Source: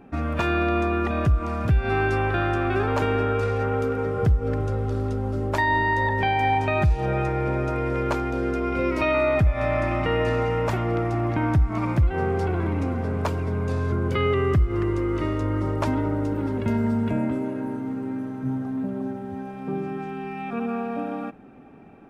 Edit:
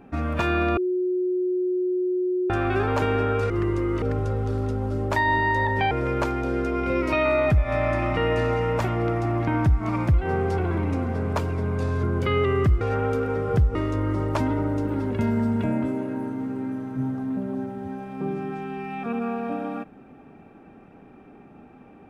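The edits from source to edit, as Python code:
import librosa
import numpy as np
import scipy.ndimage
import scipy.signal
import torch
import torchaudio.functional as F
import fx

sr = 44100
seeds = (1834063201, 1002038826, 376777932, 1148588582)

y = fx.edit(x, sr, fx.bleep(start_s=0.77, length_s=1.73, hz=364.0, db=-21.0),
    fx.swap(start_s=3.5, length_s=0.94, other_s=14.7, other_length_s=0.52),
    fx.cut(start_s=6.33, length_s=1.47), tone=tone)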